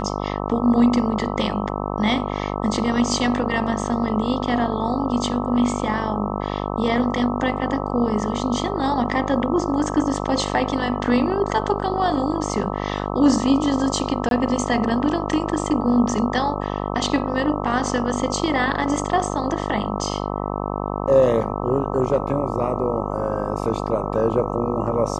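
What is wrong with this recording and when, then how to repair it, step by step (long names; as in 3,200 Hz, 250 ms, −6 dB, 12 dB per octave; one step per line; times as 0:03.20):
mains buzz 50 Hz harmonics 26 −26 dBFS
0:14.29–0:14.31: drop-out 22 ms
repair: hum removal 50 Hz, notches 26
repair the gap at 0:14.29, 22 ms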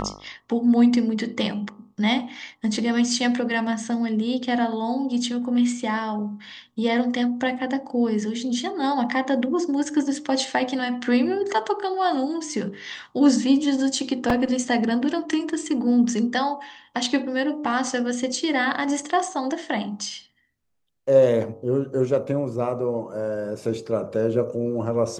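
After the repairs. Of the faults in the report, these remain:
none of them is left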